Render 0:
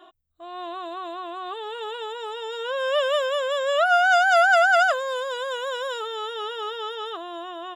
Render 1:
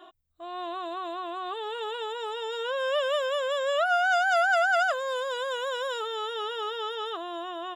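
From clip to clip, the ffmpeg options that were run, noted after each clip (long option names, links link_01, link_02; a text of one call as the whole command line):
ffmpeg -i in.wav -af "acompressor=threshold=-31dB:ratio=1.5" out.wav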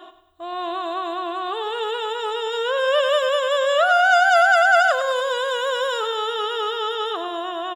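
ffmpeg -i in.wav -af "aecho=1:1:99|198|297|396|495:0.299|0.134|0.0605|0.0272|0.0122,volume=7.5dB" out.wav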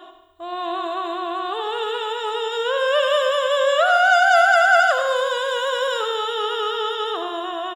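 ffmpeg -i in.wav -af "aecho=1:1:73|146|219|292|365|438|511:0.355|0.202|0.115|0.0657|0.0375|0.0213|0.0122" out.wav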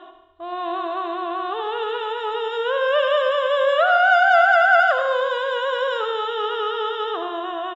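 ffmpeg -i in.wav -af "lowpass=2900" out.wav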